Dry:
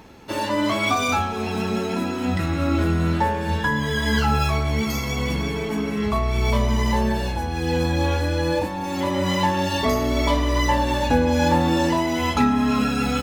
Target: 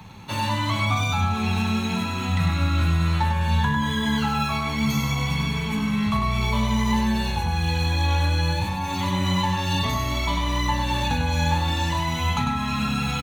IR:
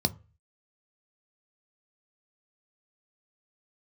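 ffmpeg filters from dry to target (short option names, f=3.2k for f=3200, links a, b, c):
-filter_complex "[0:a]acrossover=split=97|200|1200[a][b][c][d];[a]acompressor=threshold=-36dB:ratio=4[e];[b]acompressor=threshold=-34dB:ratio=4[f];[c]acompressor=threshold=-29dB:ratio=4[g];[d]acompressor=threshold=-31dB:ratio=4[h];[e][f][g][h]amix=inputs=4:normalize=0,aecho=1:1:46|99:0.133|0.562,asplit=2[i][j];[1:a]atrim=start_sample=2205[k];[j][k]afir=irnorm=-1:irlink=0,volume=-14dB[l];[i][l]amix=inputs=2:normalize=0,volume=1dB"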